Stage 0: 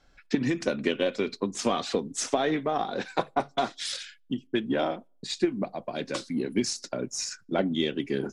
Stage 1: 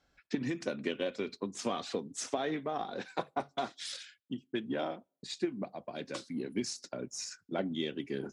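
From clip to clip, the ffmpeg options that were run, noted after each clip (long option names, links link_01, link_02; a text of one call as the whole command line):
ffmpeg -i in.wav -af "highpass=50,volume=-8dB" out.wav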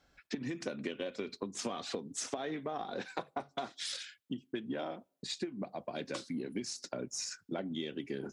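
ffmpeg -i in.wav -af "acompressor=threshold=-38dB:ratio=6,volume=3.5dB" out.wav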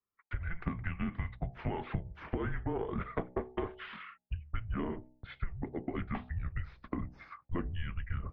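ffmpeg -i in.wav -af "agate=range=-29dB:threshold=-55dB:ratio=16:detection=peak,bandreject=frequency=63.96:width_type=h:width=4,bandreject=frequency=127.92:width_type=h:width=4,bandreject=frequency=191.88:width_type=h:width=4,bandreject=frequency=255.84:width_type=h:width=4,bandreject=frequency=319.8:width_type=h:width=4,bandreject=frequency=383.76:width_type=h:width=4,bandreject=frequency=447.72:width_type=h:width=4,bandreject=frequency=511.68:width_type=h:width=4,bandreject=frequency=575.64:width_type=h:width=4,bandreject=frequency=639.6:width_type=h:width=4,bandreject=frequency=703.56:width_type=h:width=4,bandreject=frequency=767.52:width_type=h:width=4,bandreject=frequency=831.48:width_type=h:width=4,bandreject=frequency=895.44:width_type=h:width=4,bandreject=frequency=959.4:width_type=h:width=4,bandreject=frequency=1023.36:width_type=h:width=4,bandreject=frequency=1087.32:width_type=h:width=4,bandreject=frequency=1151.28:width_type=h:width=4,bandreject=frequency=1215.24:width_type=h:width=4,highpass=frequency=220:width_type=q:width=0.5412,highpass=frequency=220:width_type=q:width=1.307,lowpass=frequency=2600:width_type=q:width=0.5176,lowpass=frequency=2600:width_type=q:width=0.7071,lowpass=frequency=2600:width_type=q:width=1.932,afreqshift=-330,volume=4.5dB" out.wav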